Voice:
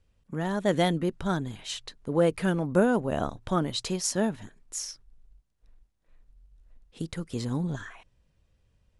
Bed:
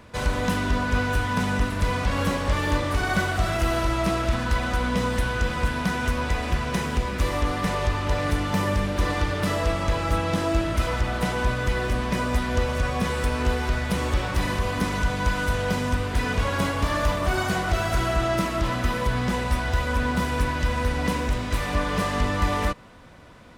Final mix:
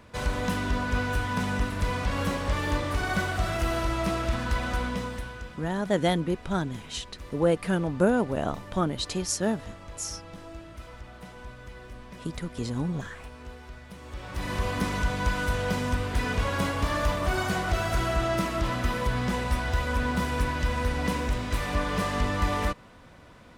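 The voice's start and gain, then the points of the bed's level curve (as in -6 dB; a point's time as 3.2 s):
5.25 s, 0.0 dB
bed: 4.79 s -4 dB
5.65 s -19.5 dB
14.01 s -19.5 dB
14.6 s -3 dB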